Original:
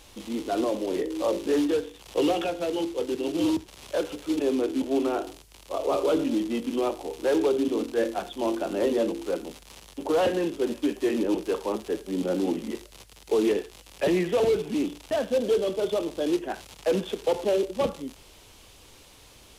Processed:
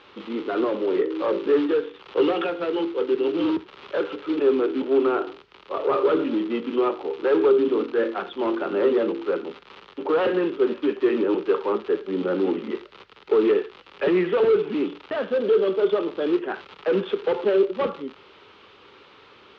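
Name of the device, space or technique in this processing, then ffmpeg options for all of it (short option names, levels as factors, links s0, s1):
overdrive pedal into a guitar cabinet: -filter_complex "[0:a]asplit=2[s0][s1];[s1]highpass=f=720:p=1,volume=3.98,asoftclip=type=tanh:threshold=0.188[s2];[s0][s2]amix=inputs=2:normalize=0,lowpass=f=2100:p=1,volume=0.501,highpass=100,equalizer=f=190:t=q:w=4:g=3,equalizer=f=400:t=q:w=4:g=8,equalizer=f=680:t=q:w=4:g=-7,equalizer=f=1300:t=q:w=4:g=8,lowpass=f=3900:w=0.5412,lowpass=f=3900:w=1.3066"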